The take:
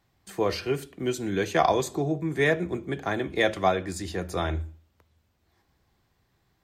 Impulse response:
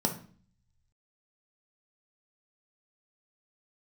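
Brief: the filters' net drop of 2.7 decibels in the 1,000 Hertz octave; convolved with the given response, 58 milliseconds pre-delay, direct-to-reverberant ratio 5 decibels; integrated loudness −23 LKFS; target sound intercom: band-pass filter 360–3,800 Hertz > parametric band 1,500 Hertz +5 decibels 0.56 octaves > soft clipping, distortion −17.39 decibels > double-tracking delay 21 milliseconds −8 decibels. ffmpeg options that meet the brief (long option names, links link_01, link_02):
-filter_complex "[0:a]equalizer=frequency=1000:width_type=o:gain=-5,asplit=2[link_01][link_02];[1:a]atrim=start_sample=2205,adelay=58[link_03];[link_02][link_03]afir=irnorm=-1:irlink=0,volume=-12.5dB[link_04];[link_01][link_04]amix=inputs=2:normalize=0,highpass=360,lowpass=3800,equalizer=frequency=1500:width_type=o:width=0.56:gain=5,asoftclip=threshold=-16dB,asplit=2[link_05][link_06];[link_06]adelay=21,volume=-8dB[link_07];[link_05][link_07]amix=inputs=2:normalize=0,volume=5dB"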